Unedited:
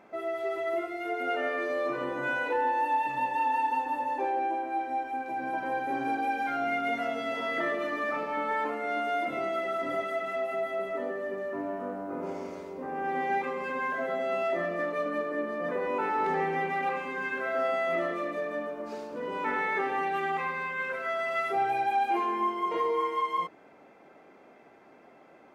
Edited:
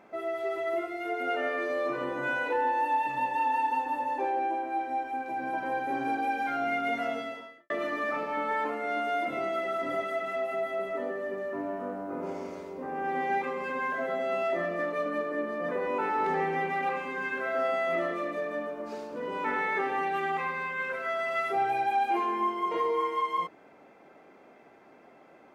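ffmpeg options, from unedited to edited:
ffmpeg -i in.wav -filter_complex "[0:a]asplit=2[link_01][link_02];[link_01]atrim=end=7.7,asetpts=PTS-STARTPTS,afade=type=out:start_time=7.15:duration=0.55:curve=qua[link_03];[link_02]atrim=start=7.7,asetpts=PTS-STARTPTS,afade=type=in:duration=0.004:curve=hsin[link_04];[link_03][link_04]concat=n=2:v=0:a=1" out.wav

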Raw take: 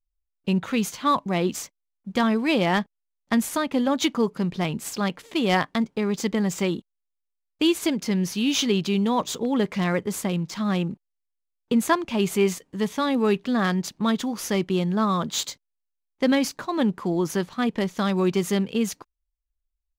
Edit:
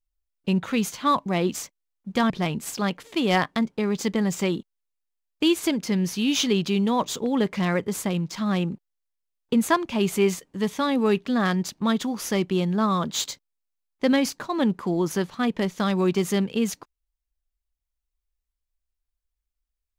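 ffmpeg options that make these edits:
ffmpeg -i in.wav -filter_complex "[0:a]asplit=2[link_01][link_02];[link_01]atrim=end=2.302[link_03];[link_02]atrim=start=4.488[link_04];[link_03][link_04]acrossfade=duration=0.004:curve1=hsin:curve2=hsin" out.wav

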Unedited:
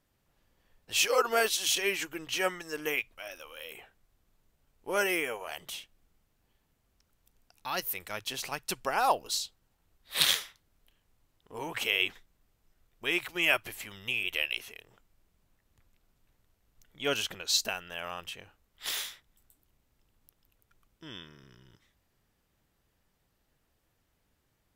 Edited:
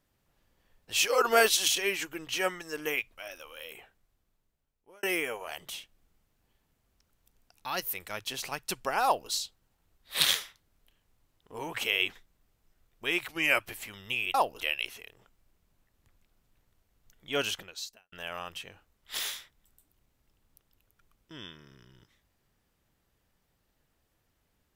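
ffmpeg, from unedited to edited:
ffmpeg -i in.wav -filter_complex "[0:a]asplit=9[link_01][link_02][link_03][link_04][link_05][link_06][link_07][link_08][link_09];[link_01]atrim=end=1.212[link_10];[link_02]atrim=start=1.208:end=1.682,asetpts=PTS-STARTPTS,volume=4.5dB[link_11];[link_03]atrim=start=1.678:end=5.03,asetpts=PTS-STARTPTS,afade=type=out:start_time=1.952:duration=1.4[link_12];[link_04]atrim=start=5.03:end=13.294,asetpts=PTS-STARTPTS,afade=type=in:duration=0.004:curve=hsin[link_13];[link_05]atrim=start=13.29:end=13.59,asetpts=PTS-STARTPTS,asetrate=41013,aresample=44100[link_14];[link_06]atrim=start=13.586:end=14.322[link_15];[link_07]atrim=start=9.038:end=9.302[link_16];[link_08]atrim=start=14.318:end=17.84,asetpts=PTS-STARTPTS,afade=type=out:start_time=2.902:duration=0.62:curve=qua[link_17];[link_09]atrim=start=17.84,asetpts=PTS-STARTPTS,afade=type=in:duration=0.004:curve=hsin[link_18];[link_10][link_11]acrossfade=duration=0.004:curve1=hsin:curve2=hsin[link_19];[link_12][link_13]concat=n=2:v=0:a=1[link_20];[link_19][link_20]acrossfade=duration=0.004:curve1=hsin:curve2=hsin[link_21];[link_21][link_14]acrossfade=duration=0.004:curve1=hsin:curve2=hsin[link_22];[link_22][link_15]acrossfade=duration=0.004:curve1=hsin:curve2=hsin[link_23];[link_23][link_16]acrossfade=duration=0.004:curve1=hsin:curve2=hsin[link_24];[link_17][link_18]concat=n=2:v=0:a=1[link_25];[link_24][link_25]acrossfade=duration=0.004:curve1=hsin:curve2=hsin" out.wav

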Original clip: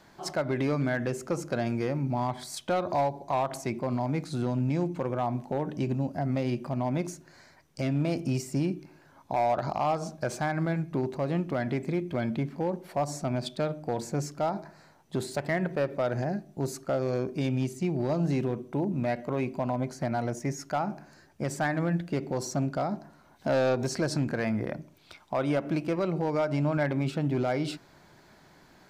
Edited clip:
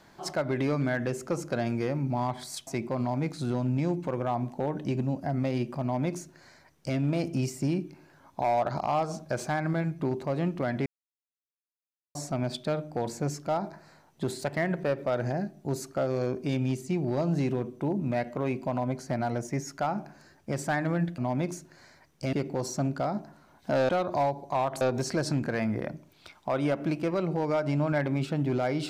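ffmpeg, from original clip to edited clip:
ffmpeg -i in.wav -filter_complex "[0:a]asplit=8[link_01][link_02][link_03][link_04][link_05][link_06][link_07][link_08];[link_01]atrim=end=2.672[link_09];[link_02]atrim=start=3.588:end=11.78,asetpts=PTS-STARTPTS,afade=type=out:start_time=8.188:duration=0.004:curve=hsin[link_10];[link_03]atrim=start=11.78:end=13.07,asetpts=PTS-STARTPTS,volume=0[link_11];[link_04]atrim=start=13.07:end=22.102,asetpts=PTS-STARTPTS,afade=type=in:duration=0.004:curve=hsin[link_12];[link_05]atrim=start=6.738:end=7.892[link_13];[link_06]atrim=start=22.098:end=23.662[link_14];[link_07]atrim=start=2.668:end=3.592[link_15];[link_08]atrim=start=23.658[link_16];[link_10][link_11][link_12]concat=n=3:v=0:a=1[link_17];[link_09][link_17]acrossfade=duration=0.004:curve1=hsin:curve2=hsin[link_18];[link_18][link_13]acrossfade=duration=0.004:curve1=hsin:curve2=hsin[link_19];[link_19][link_14]acrossfade=duration=0.004:curve1=hsin:curve2=hsin[link_20];[link_20][link_15]acrossfade=duration=0.004:curve1=hsin:curve2=hsin[link_21];[link_21][link_16]acrossfade=duration=0.004:curve1=hsin:curve2=hsin" out.wav

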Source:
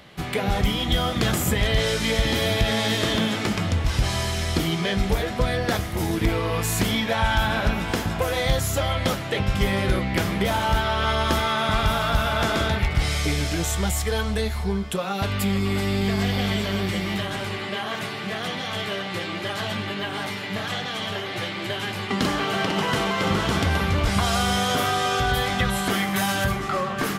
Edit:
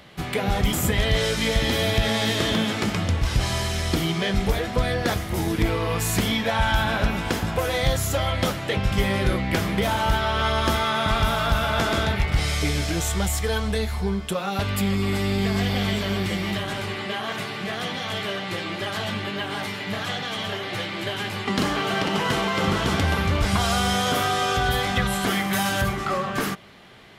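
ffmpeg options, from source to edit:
ffmpeg -i in.wav -filter_complex "[0:a]asplit=2[link_01][link_02];[link_01]atrim=end=0.732[link_03];[link_02]atrim=start=1.358[link_04];[link_03][link_04]acrossfade=duration=0.004:curve1=hsin:curve2=hsin" out.wav

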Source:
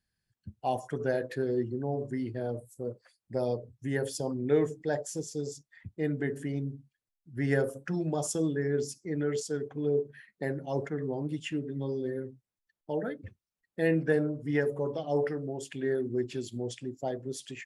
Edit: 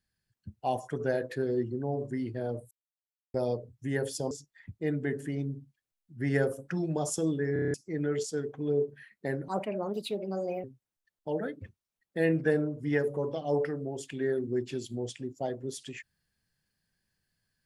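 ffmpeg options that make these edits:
ffmpeg -i in.wav -filter_complex "[0:a]asplit=13[link_01][link_02][link_03][link_04][link_05][link_06][link_07][link_08][link_09][link_10][link_11][link_12][link_13];[link_01]atrim=end=2.71,asetpts=PTS-STARTPTS,afade=type=out:start_time=2.706:duration=0.004:curve=hsin[link_14];[link_02]atrim=start=2.71:end=3.34,asetpts=PTS-STARTPTS,volume=0[link_15];[link_03]atrim=start=3.34:end=4.312,asetpts=PTS-STARTPTS,afade=type=in:duration=0.004:curve=hsin[link_16];[link_04]atrim=start=5.478:end=8.732[link_17];[link_05]atrim=start=8.698:end=8.732[link_18];[link_06]atrim=start=8.698:end=8.732[link_19];[link_07]atrim=start=8.698:end=8.732[link_20];[link_08]atrim=start=8.698:end=8.732[link_21];[link_09]atrim=start=8.698:end=8.732[link_22];[link_10]atrim=start=8.698:end=8.732[link_23];[link_11]atrim=start=8.908:end=10.654[link_24];[link_12]atrim=start=10.65:end=12.26,asetpts=PTS-STARTPTS,asetrate=61299,aresample=44100[link_25];[link_13]atrim=start=12.256[link_26];[link_14][link_15][link_16]concat=n=3:v=0:a=1[link_27];[link_27][link_17]acrossfade=duration=0.004:curve1=hsin:curve2=hsin[link_28];[link_28][link_18]acrossfade=duration=0.004:curve1=hsin:curve2=hsin[link_29];[link_29][link_19]acrossfade=duration=0.004:curve1=hsin:curve2=hsin[link_30];[link_30][link_20]acrossfade=duration=0.004:curve1=hsin:curve2=hsin[link_31];[link_31][link_21]acrossfade=duration=0.004:curve1=hsin:curve2=hsin[link_32];[link_32][link_22]acrossfade=duration=0.004:curve1=hsin:curve2=hsin[link_33];[link_33][link_23]acrossfade=duration=0.004:curve1=hsin:curve2=hsin[link_34];[link_34][link_24]acrossfade=duration=0.004:curve1=hsin:curve2=hsin[link_35];[link_35][link_25]acrossfade=duration=0.004:curve1=hsin:curve2=hsin[link_36];[link_36][link_26]acrossfade=duration=0.004:curve1=hsin:curve2=hsin" out.wav

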